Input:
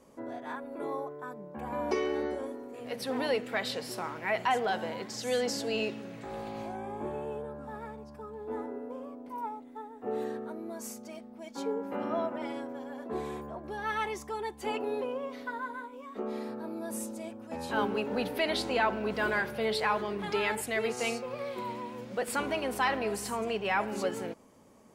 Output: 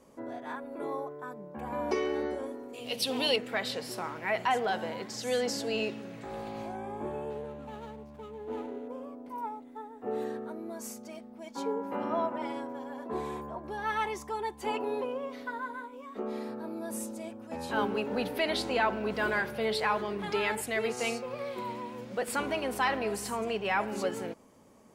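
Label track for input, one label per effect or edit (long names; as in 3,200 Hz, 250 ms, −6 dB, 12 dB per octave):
2.730000	3.360000	high shelf with overshoot 2,300 Hz +7.5 dB, Q 3
7.300000	8.880000	running median over 25 samples
11.460000	15.050000	parametric band 970 Hz +7.5 dB 0.22 octaves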